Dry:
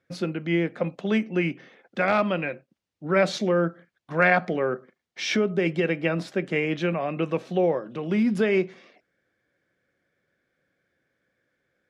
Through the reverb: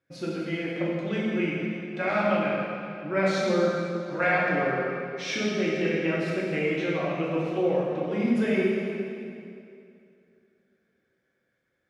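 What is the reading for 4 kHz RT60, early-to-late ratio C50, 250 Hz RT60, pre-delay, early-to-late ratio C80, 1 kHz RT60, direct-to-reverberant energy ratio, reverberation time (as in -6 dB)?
2.1 s, -1.5 dB, 2.8 s, 3 ms, 0.0 dB, 2.5 s, -6.5 dB, 2.5 s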